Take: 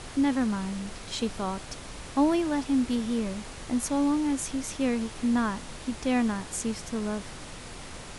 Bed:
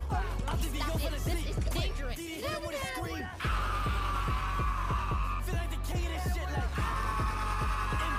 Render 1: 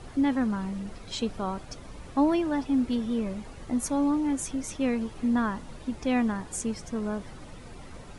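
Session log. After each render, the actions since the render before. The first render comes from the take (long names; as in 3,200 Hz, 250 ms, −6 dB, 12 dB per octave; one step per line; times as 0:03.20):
broadband denoise 11 dB, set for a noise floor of −42 dBFS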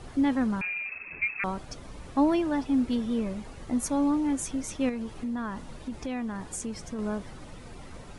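0:00.61–0:01.44: voice inversion scrambler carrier 2,600 Hz
0:04.89–0:06.99: downward compressor 3 to 1, threshold −31 dBFS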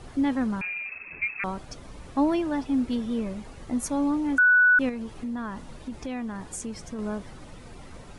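0:04.38–0:04.79: beep over 1,480 Hz −14.5 dBFS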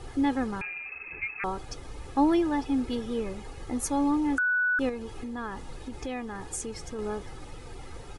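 dynamic equaliser 2,300 Hz, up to −6 dB, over −41 dBFS, Q 2.4
comb filter 2.4 ms, depth 55%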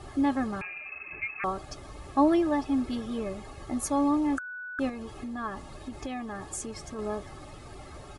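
notch comb filter 490 Hz
hollow resonant body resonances 610/1,100 Hz, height 12 dB, ringing for 60 ms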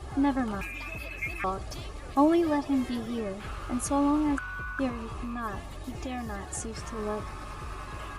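mix in bed −9 dB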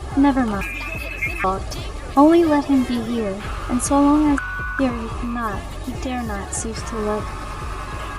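level +10 dB
brickwall limiter −3 dBFS, peak gain reduction 1 dB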